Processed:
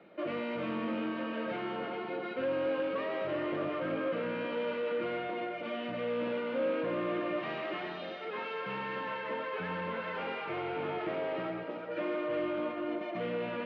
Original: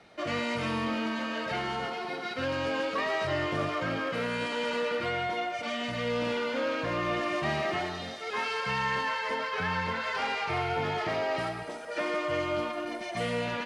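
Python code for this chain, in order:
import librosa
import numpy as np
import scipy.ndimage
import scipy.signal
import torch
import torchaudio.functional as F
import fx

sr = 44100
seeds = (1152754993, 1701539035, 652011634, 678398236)

p1 = fx.tilt_eq(x, sr, slope=2.5, at=(7.4, 8.25))
p2 = 10.0 ** (-30.5 / 20.0) * np.tanh(p1 / 10.0 ** (-30.5 / 20.0))
p3 = fx.cabinet(p2, sr, low_hz=160.0, low_slope=12, high_hz=2900.0, hz=(190.0, 330.0, 540.0, 780.0, 1900.0), db=(7, 9, 8, -4, -4))
p4 = p3 + fx.echo_single(p3, sr, ms=386, db=-9.5, dry=0)
y = F.gain(torch.from_numpy(p4), -3.0).numpy()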